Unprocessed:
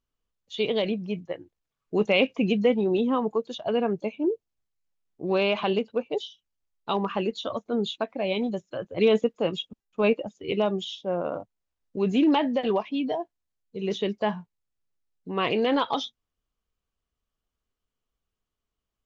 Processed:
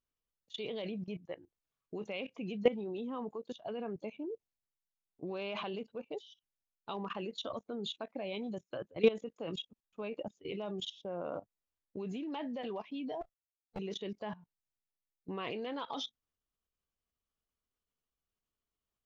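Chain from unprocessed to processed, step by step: 13.21–13.79 minimum comb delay 1.5 ms; low shelf 67 Hz -4.5 dB; level quantiser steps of 18 dB; gain -3 dB

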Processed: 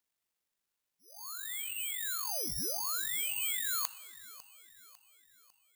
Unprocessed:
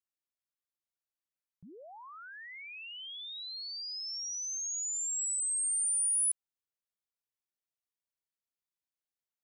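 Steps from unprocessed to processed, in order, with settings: HPF 1100 Hz 12 dB/oct; reverse; compressor, threshold -42 dBFS, peak gain reduction 13 dB; reverse; granular stretch 0.61×, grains 41 ms; on a send: thin delay 0.55 s, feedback 47%, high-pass 1600 Hz, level -18 dB; on the sum: plate-style reverb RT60 3.3 s, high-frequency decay 0.35×, DRR 14.5 dB; careless resampling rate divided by 8×, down none, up zero stuff

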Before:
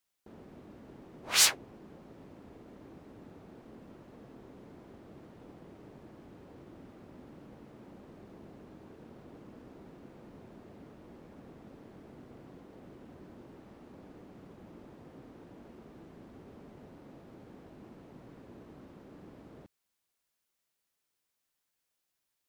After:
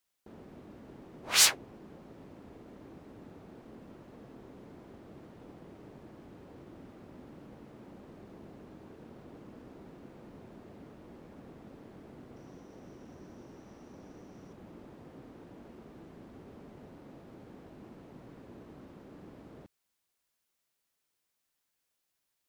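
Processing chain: 12.36–14.53 bell 5800 Hz +14.5 dB 0.2 oct; gain +1 dB

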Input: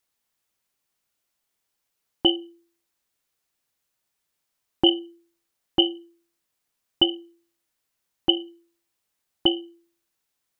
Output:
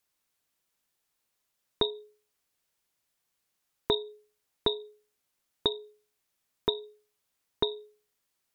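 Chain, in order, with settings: compressor 3:1, threshold -26 dBFS, peak gain reduction 10 dB; varispeed +24%

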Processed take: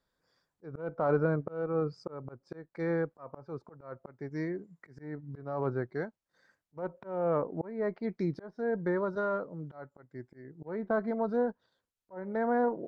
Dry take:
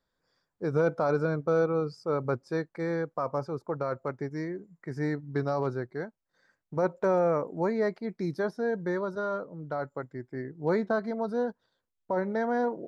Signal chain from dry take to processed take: treble ducked by the level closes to 1800 Hz, closed at -25.5 dBFS; added harmonics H 4 -34 dB, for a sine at -15 dBFS; auto swell 0.374 s

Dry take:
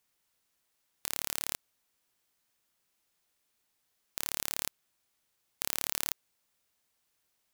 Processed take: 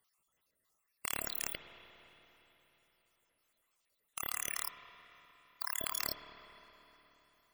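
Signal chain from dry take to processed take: random spectral dropouts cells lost 55%; formant shift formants +3 st; spring tank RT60 3.7 s, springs 51/58 ms, chirp 60 ms, DRR 8 dB; gain +1 dB

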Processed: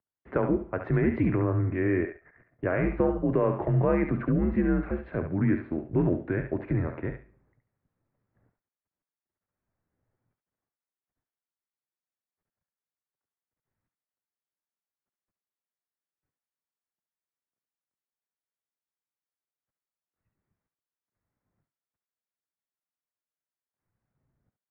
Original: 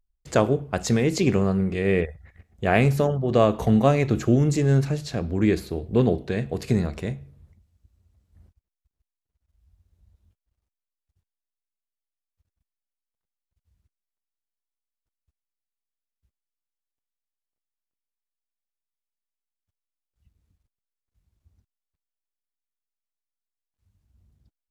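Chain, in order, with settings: limiter -13 dBFS, peak gain reduction 8.5 dB; thinning echo 70 ms, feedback 23%, high-pass 950 Hz, level -5 dB; mistuned SSB -87 Hz 190–2100 Hz

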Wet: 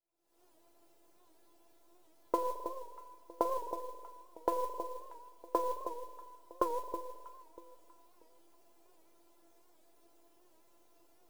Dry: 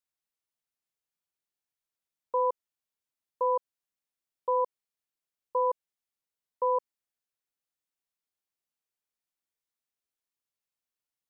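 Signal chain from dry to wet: half-wave gain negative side -3 dB; recorder AGC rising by 75 dB/s; low shelf 400 Hz +10 dB; spring tank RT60 1.1 s, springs 43 ms, chirp 30 ms, DRR 16.5 dB; limiter -4 dBFS, peak gain reduction 8 dB; compressor 10:1, threshold -27 dBFS, peak gain reduction 16 dB; band shelf 570 Hz +14 dB 2.3 oct; notch 1100 Hz, Q 8.4; resonator 340 Hz, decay 0.22 s, harmonics all, mix 90%; on a send: echo with dull and thin repeats by turns 0.32 s, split 960 Hz, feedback 50%, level -9 dB; on the sum: modulation noise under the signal 22 dB; record warp 78 rpm, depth 100 cents

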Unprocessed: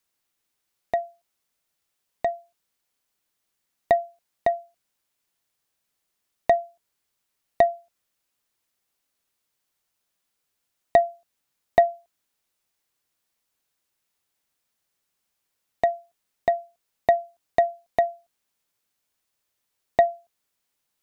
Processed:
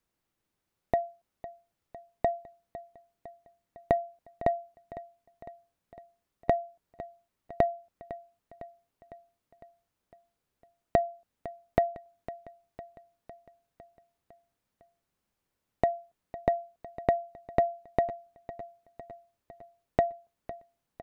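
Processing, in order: low shelf 360 Hz +8.5 dB; compressor 4:1, threshold -22 dBFS, peak gain reduction 10.5 dB; high shelf 2300 Hz -9.5 dB; feedback echo 0.505 s, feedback 60%, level -16 dB

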